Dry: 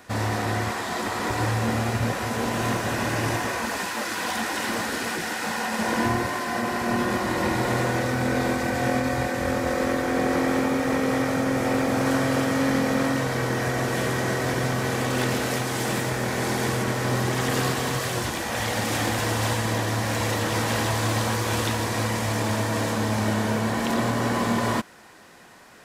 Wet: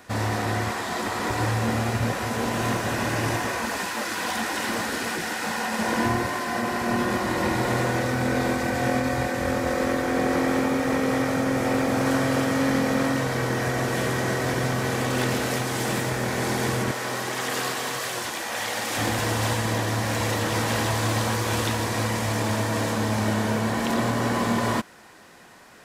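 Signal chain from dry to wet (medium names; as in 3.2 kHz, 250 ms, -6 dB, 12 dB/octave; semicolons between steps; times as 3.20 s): 16.91–18.97 s: high-pass 590 Hz 6 dB/octave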